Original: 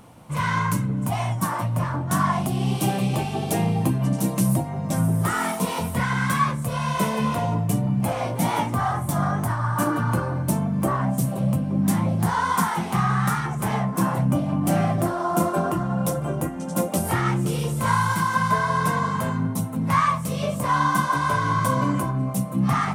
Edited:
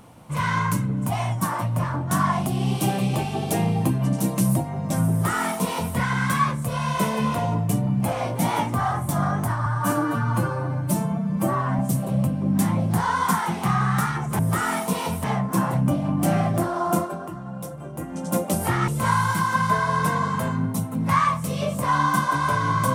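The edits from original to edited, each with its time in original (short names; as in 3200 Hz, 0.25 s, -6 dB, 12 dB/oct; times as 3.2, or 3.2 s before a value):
5.11–5.96 copy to 13.68
9.66–11.08 stretch 1.5×
15.37–16.6 dip -10 dB, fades 0.22 s
17.32–17.69 cut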